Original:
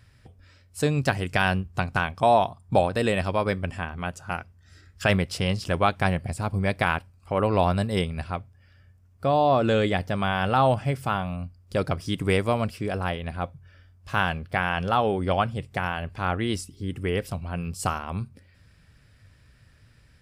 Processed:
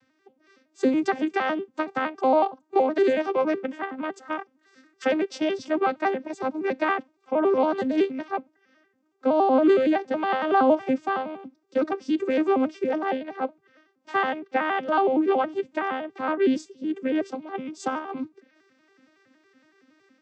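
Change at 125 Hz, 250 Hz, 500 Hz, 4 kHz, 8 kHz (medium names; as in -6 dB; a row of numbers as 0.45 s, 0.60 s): under -25 dB, +4.0 dB, +2.5 dB, -7.0 dB, no reading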